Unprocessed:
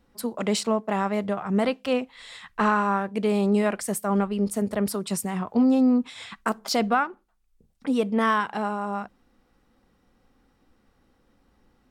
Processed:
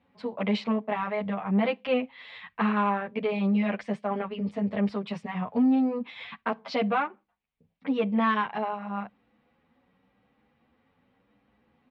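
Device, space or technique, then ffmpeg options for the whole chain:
barber-pole flanger into a guitar amplifier: -filter_complex "[0:a]asplit=2[a][b];[b]adelay=9,afreqshift=0.92[c];[a][c]amix=inputs=2:normalize=1,asoftclip=type=tanh:threshold=-16.5dB,highpass=110,equalizer=f=350:t=q:w=4:g=-9,equalizer=f=1.4k:t=q:w=4:g=-5,equalizer=f=2.3k:t=q:w=4:g=4,lowpass=f=3.4k:w=0.5412,lowpass=f=3.4k:w=1.3066,volume=2.5dB"

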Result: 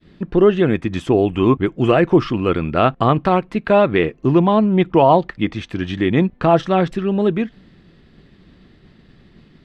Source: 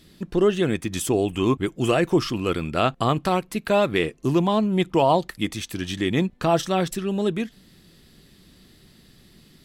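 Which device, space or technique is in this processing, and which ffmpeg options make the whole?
hearing-loss simulation: -filter_complex "[0:a]asettb=1/sr,asplit=3[a][b][c];[a]atrim=end=3.824[d];[b]atrim=start=3.82:end=5.56,asetpts=PTS-STARTPTS,afade=t=in:d=0.004:c=qsin,afade=t=out:st=1.736:d=0.004:c=qsin,acrossover=split=7200[e][f];[f]acompressor=threshold=-59dB:ratio=4:attack=1:release=60[g];[e][g]amix=inputs=2:normalize=0[h];[c]atrim=start=5.556[i];[d][h]acrossfade=d=0.004:c1=hsin:c2=qsin[j];[j][i]acrossfade=d=0.004:c1=qsin:c2=hsin,lowpass=2.3k,agate=range=-33dB:threshold=-51dB:ratio=3:detection=peak,volume=6.5dB"

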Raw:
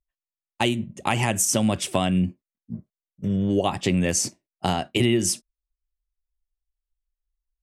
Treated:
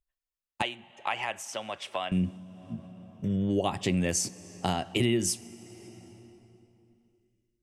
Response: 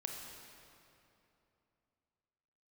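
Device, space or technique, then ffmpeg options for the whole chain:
compressed reverb return: -filter_complex "[0:a]asplit=2[a][b];[1:a]atrim=start_sample=2205[c];[b][c]afir=irnorm=-1:irlink=0,acompressor=threshold=-35dB:ratio=10,volume=-2dB[d];[a][d]amix=inputs=2:normalize=0,asettb=1/sr,asplit=3[e][f][g];[e]atrim=end=0.624[h];[f]atrim=start=0.62:end=2.12,asetpts=PTS-STARTPTS,afade=t=in:d=0.004:c=qsin,afade=t=out:st=1.496:d=0.004:c=qsin,acrossover=split=540 4100:gain=0.0708 1 0.126[i][j][k];[i][j][k]amix=inputs=3:normalize=0[l];[g]atrim=start=2.116[m];[h][l]acrossfade=d=0.004:c1=hsin:c2=qsin[n];[n][m]acrossfade=d=0.004:c1=qsin:c2=hsin,volume=-6dB"

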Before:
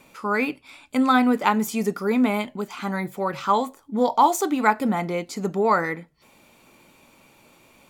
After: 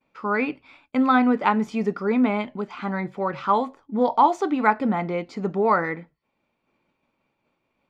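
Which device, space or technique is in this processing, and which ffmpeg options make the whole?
hearing-loss simulation: -af "lowpass=2.6k,agate=range=-33dB:threshold=-44dB:ratio=3:detection=peak,equalizer=f=5.1k:w=2.5:g=3.5"

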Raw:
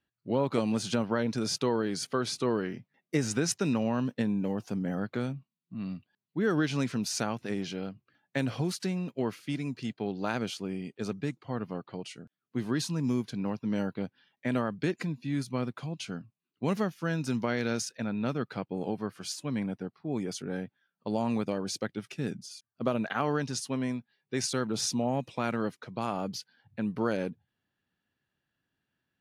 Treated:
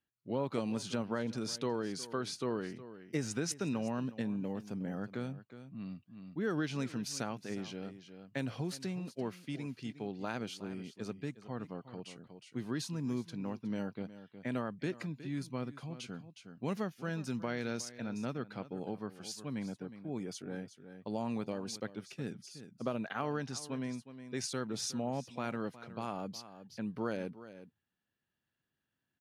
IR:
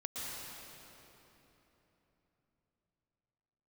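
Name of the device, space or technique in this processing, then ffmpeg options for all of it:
ducked delay: -filter_complex "[0:a]asplit=3[a][b][c];[b]adelay=364,volume=-2dB[d];[c]apad=whole_len=1303909[e];[d][e]sidechaincompress=threshold=-41dB:ratio=6:attack=16:release=1010[f];[a][f]amix=inputs=2:normalize=0,volume=-7dB"

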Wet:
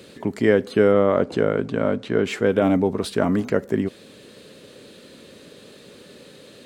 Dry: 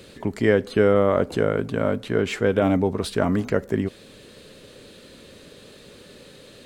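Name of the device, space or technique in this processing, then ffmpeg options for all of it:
filter by subtraction: -filter_complex "[0:a]asplit=2[a][b];[b]lowpass=220,volume=-1[c];[a][c]amix=inputs=2:normalize=0,asettb=1/sr,asplit=3[d][e][f];[d]atrim=end=0.924[g];[e]atrim=start=0.92:end=2.24,asetpts=PTS-STARTPTS,afade=t=in:d=0.004:c=qsin,afade=t=out:st=1.316:d=0.004:c=qsin,lowpass=7k[h];[f]atrim=start=2.236[i];[g][h]acrossfade=d=0.004:c1=hsin:c2=qsin[j];[j][i]acrossfade=d=0.004:c1=qsin:c2=hsin"

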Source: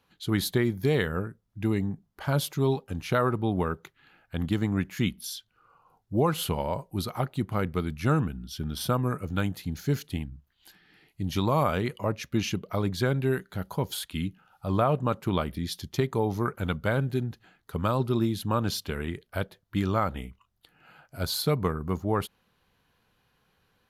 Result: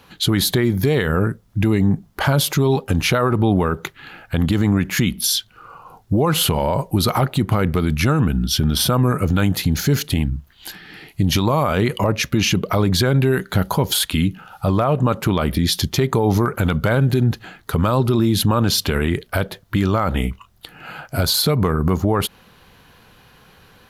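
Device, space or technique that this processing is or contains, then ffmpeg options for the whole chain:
loud club master: -af "acompressor=threshold=-29dB:ratio=2.5,asoftclip=type=hard:threshold=-19.5dB,alimiter=level_in=27.5dB:limit=-1dB:release=50:level=0:latency=1,volume=-7.5dB"

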